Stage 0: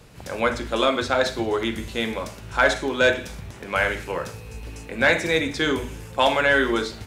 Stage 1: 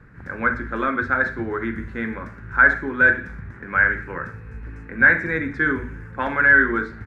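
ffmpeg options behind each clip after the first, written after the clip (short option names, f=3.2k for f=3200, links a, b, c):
-af "firequalizer=gain_entry='entry(250,0);entry(640,-13);entry(1600,8);entry(2900,-22);entry(9800,-29)':delay=0.05:min_phase=1,volume=1.5dB"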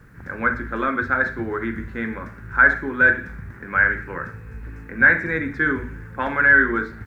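-af "acrusher=bits=10:mix=0:aa=0.000001"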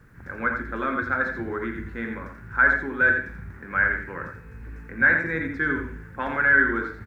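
-af "aecho=1:1:86:0.473,volume=-4.5dB"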